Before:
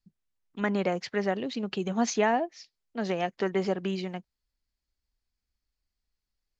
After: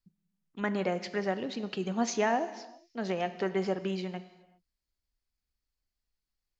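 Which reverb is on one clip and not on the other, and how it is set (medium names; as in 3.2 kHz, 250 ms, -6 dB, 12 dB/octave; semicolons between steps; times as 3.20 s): gated-style reverb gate 430 ms falling, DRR 11 dB; trim -3 dB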